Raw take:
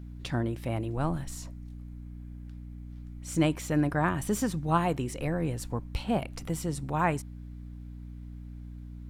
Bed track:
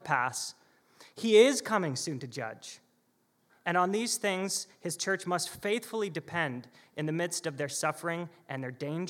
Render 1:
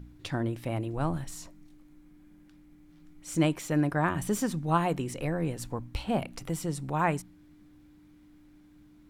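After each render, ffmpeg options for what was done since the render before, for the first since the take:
-af "bandreject=f=60:t=h:w=4,bandreject=f=120:t=h:w=4,bandreject=f=180:t=h:w=4,bandreject=f=240:t=h:w=4"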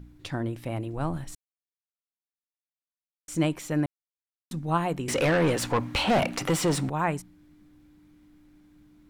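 -filter_complex "[0:a]asettb=1/sr,asplit=3[a][b][c];[a]atrim=end=5.084[d];[b]atrim=start=5.08:end=6.89,asetpts=PTS-STARTPTS,afade=t=in:d=0.004:c=qsin,afade=t=out:st=1.806:d=0.004:c=qsin,asplit=2[e][f];[f]highpass=f=720:p=1,volume=29dB,asoftclip=type=tanh:threshold=-14dB[g];[e][g]amix=inputs=2:normalize=0,lowpass=f=2.9k:p=1,volume=-6dB[h];[c]atrim=start=6.886[i];[d][h]acrossfade=d=0.004:c1=hsin:c2=qsin[j];[j][i]acrossfade=d=0.004:c1=qsin:c2=hsin,asplit=5[k][l][m][n][o];[k]atrim=end=1.35,asetpts=PTS-STARTPTS,afade=t=out:st=1.346:d=0.004:c=hsin[p];[l]atrim=start=1.35:end=3.28,asetpts=PTS-STARTPTS,volume=0[q];[m]atrim=start=3.28:end=3.86,asetpts=PTS-STARTPTS,afade=t=in:d=0.004:c=hsin,afade=t=out:st=0.576:d=0.004:c=hsin[r];[n]atrim=start=3.86:end=4.51,asetpts=PTS-STARTPTS,volume=0[s];[o]atrim=start=4.51,asetpts=PTS-STARTPTS,afade=t=in:d=0.004:c=hsin[t];[p][q][r][s][t]concat=n=5:v=0:a=1"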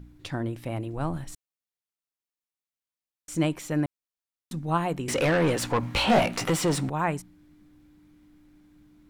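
-filter_complex "[0:a]asettb=1/sr,asplit=3[a][b][c];[a]atrim=end=5.814[d];[b]atrim=start=5.81:end=6.5,asetpts=PTS-STARTPTS,afade=t=in:d=0.004:c=qsin,afade=t=out:st=0.686:d=0.004:c=qsin,asplit=2[e][f];[f]adelay=18,volume=-2.5dB[g];[e][g]amix=inputs=2:normalize=0,atrim=end_sample=30429[h];[c]atrim=start=6.496[i];[d][h]acrossfade=d=0.004:c1=hsin:c2=qsin[j];[j][i]acrossfade=d=0.004:c1=qsin:c2=hsin"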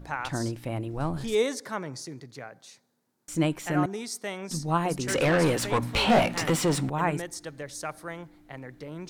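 -filter_complex "[1:a]volume=-4.5dB[a];[0:a][a]amix=inputs=2:normalize=0"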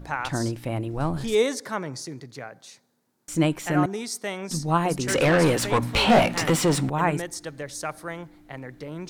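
-af "volume=3.5dB"

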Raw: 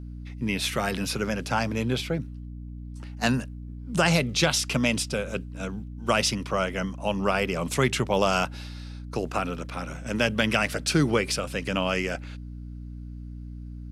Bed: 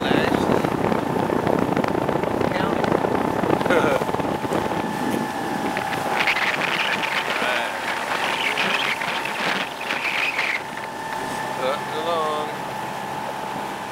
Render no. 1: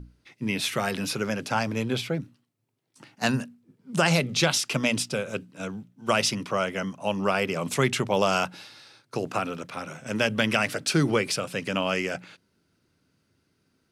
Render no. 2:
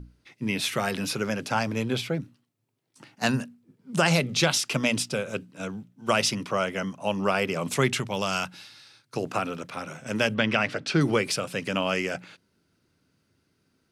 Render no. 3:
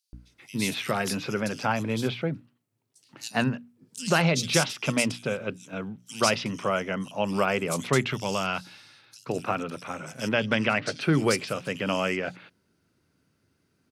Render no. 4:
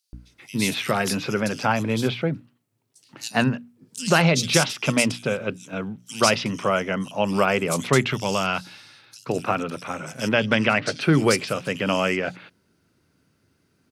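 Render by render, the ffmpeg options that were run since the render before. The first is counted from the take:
-af "bandreject=f=60:t=h:w=6,bandreject=f=120:t=h:w=6,bandreject=f=180:t=h:w=6,bandreject=f=240:t=h:w=6,bandreject=f=300:t=h:w=6"
-filter_complex "[0:a]asettb=1/sr,asplit=3[a][b][c];[a]atrim=end=8.004[d];[b]atrim=start=8:end=9.17,asetpts=PTS-STARTPTS,afade=t=in:d=0.004:c=qsin,afade=t=out:st=1.166:d=0.004:c=qsin,equalizer=f=530:w=0.54:g=-8[e];[c]atrim=start=9.166[f];[d][e]acrossfade=d=0.004:c1=hsin:c2=qsin[g];[g][f]acrossfade=d=0.004:c1=qsin:c2=hsin,asettb=1/sr,asplit=3[h][i][j];[h]atrim=end=10.344[k];[i]atrim=start=10.34:end=11.01,asetpts=PTS-STARTPTS,afade=t=in:d=0.004:c=qsin,afade=t=out:st=0.666:d=0.004:c=qsin,lowpass=4.1k[l];[j]atrim=start=11.006[m];[k][l]acrossfade=d=0.004:c1=hsin:c2=qsin[n];[n][m]acrossfade=d=0.004:c1=qsin:c2=hsin"
-filter_complex "[0:a]acrossover=split=3900[a][b];[a]adelay=130[c];[c][b]amix=inputs=2:normalize=0"
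-af "volume=4.5dB,alimiter=limit=-3dB:level=0:latency=1"

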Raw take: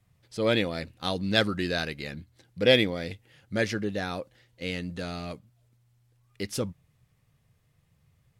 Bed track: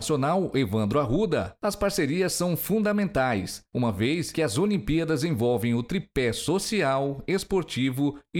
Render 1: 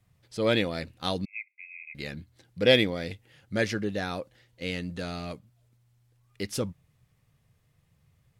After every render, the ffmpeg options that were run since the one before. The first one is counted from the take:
-filter_complex "[0:a]asettb=1/sr,asplit=3[a][b][c];[a]atrim=end=1.254[d];[b]atrim=start=1.25:end=1.95,asetpts=PTS-STARTPTS,afade=t=in:d=0.004:c=qsin,afade=t=out:st=0.696:d=0.004:c=qsin,asuperpass=centerf=2300:order=12:qfactor=4.5[e];[c]atrim=start=1.946[f];[d][e]acrossfade=d=0.004:c1=hsin:c2=qsin[g];[g][f]acrossfade=d=0.004:c1=qsin:c2=hsin"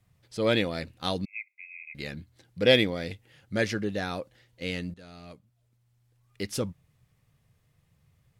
-filter_complex "[0:a]asplit=2[a][b];[a]atrim=end=4.94,asetpts=PTS-STARTPTS,afade=t=out:st=4.936:d=0.004:c=hsin:silence=0.133352[c];[b]atrim=start=4.94,asetpts=PTS-STARTPTS,afade=t=in:d=1.47:silence=0.133352[d];[c][d]concat=n=2:v=0:a=1"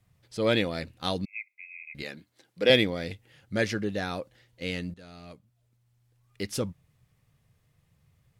-filter_complex "[0:a]asettb=1/sr,asplit=3[a][b][c];[a]atrim=end=2.034[d];[b]atrim=start=2.03:end=2.7,asetpts=PTS-STARTPTS,afade=t=in:d=0.004:c=qsin,afade=t=out:st=0.666:d=0.004:c=qsin,highpass=270[e];[c]atrim=start=2.696[f];[d][e]acrossfade=d=0.004:c1=hsin:c2=qsin[g];[g][f]acrossfade=d=0.004:c1=qsin:c2=hsin"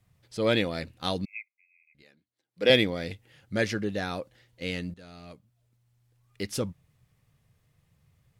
-filter_complex "[0:a]asplit=3[a][b][c];[a]atrim=end=1.54,asetpts=PTS-STARTPTS,afade=t=out:st=1.36:d=0.18:c=qua:silence=0.0944061[d];[b]atrim=start=1.54:end=2.47,asetpts=PTS-STARTPTS,volume=-20.5dB[e];[c]atrim=start=2.47,asetpts=PTS-STARTPTS,afade=t=in:d=0.18:c=qua:silence=0.0944061[f];[d][e][f]concat=n=3:v=0:a=1"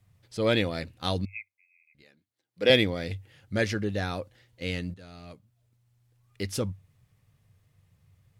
-af "equalizer=f=96:w=6.3:g=9.5"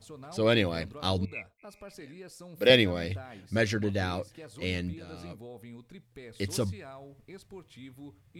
-filter_complex "[1:a]volume=-22dB[a];[0:a][a]amix=inputs=2:normalize=0"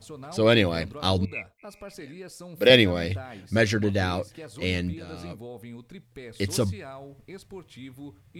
-af "volume=5dB,alimiter=limit=-3dB:level=0:latency=1"

